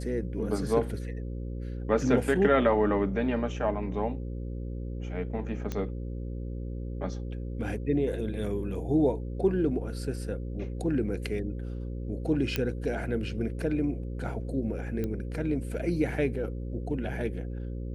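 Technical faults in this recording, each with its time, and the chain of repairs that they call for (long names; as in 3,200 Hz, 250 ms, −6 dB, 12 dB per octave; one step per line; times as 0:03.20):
mains buzz 60 Hz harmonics 9 −35 dBFS
0:05.72: click −19 dBFS
0:12.56: click −13 dBFS
0:15.04: click −20 dBFS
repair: click removal
hum removal 60 Hz, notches 9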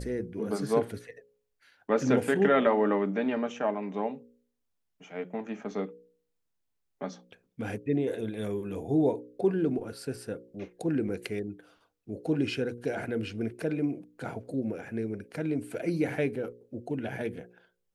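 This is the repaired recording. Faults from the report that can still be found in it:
none of them is left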